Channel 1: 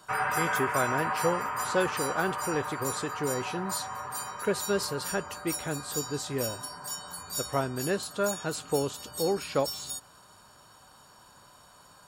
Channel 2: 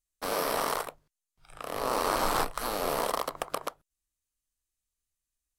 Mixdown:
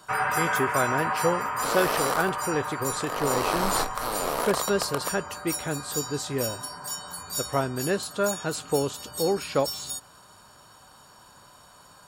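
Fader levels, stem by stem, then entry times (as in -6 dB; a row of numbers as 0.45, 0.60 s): +3.0, +1.0 dB; 0.00, 1.40 s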